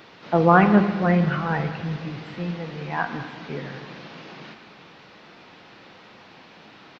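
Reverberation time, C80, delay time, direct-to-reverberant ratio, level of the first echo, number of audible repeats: 1.9 s, 9.5 dB, 204 ms, 7.0 dB, -17.5 dB, 1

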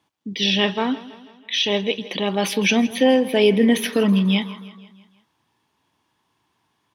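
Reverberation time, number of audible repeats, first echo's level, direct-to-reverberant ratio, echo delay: no reverb, 4, -17.5 dB, no reverb, 163 ms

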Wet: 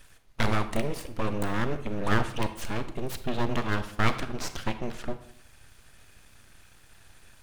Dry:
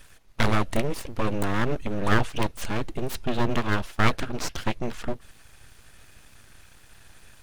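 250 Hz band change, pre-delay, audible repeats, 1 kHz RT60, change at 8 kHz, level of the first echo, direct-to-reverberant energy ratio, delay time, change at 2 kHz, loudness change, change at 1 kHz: -3.0 dB, 30 ms, no echo, 0.65 s, -3.5 dB, no echo, 10.0 dB, no echo, -3.5 dB, -3.0 dB, -3.0 dB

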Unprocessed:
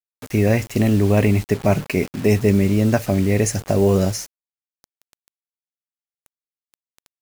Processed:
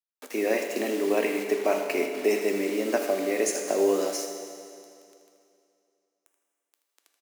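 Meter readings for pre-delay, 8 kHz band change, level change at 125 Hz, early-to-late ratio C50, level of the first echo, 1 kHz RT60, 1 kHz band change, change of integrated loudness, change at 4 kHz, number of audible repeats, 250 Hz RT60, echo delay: 8 ms, -4.0 dB, under -30 dB, 4.5 dB, -11.5 dB, 2.5 s, -4.0 dB, -8.0 dB, -3.5 dB, 1, 2.5 s, 80 ms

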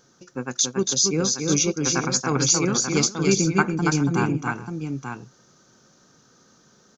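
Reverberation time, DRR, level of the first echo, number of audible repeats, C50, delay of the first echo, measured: no reverb, no reverb, -4.0 dB, 3, no reverb, 281 ms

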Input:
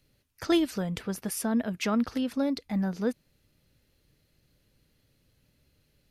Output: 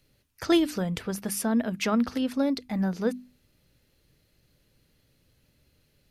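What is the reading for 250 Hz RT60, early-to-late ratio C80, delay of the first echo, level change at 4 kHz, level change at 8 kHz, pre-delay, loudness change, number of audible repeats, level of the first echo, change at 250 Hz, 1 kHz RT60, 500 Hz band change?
no reverb, no reverb, no echo, +2.5 dB, +2.5 dB, no reverb, +2.0 dB, no echo, no echo, +2.0 dB, no reverb, +2.5 dB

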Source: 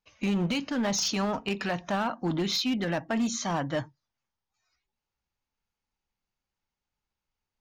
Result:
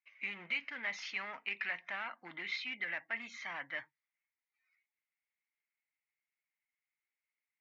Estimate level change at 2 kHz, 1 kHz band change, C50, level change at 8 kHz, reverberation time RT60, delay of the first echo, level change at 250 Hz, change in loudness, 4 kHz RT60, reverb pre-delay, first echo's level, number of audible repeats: -0.5 dB, -14.5 dB, no reverb, -25.0 dB, no reverb, no echo, -28.5 dB, -10.5 dB, no reverb, no reverb, no echo, no echo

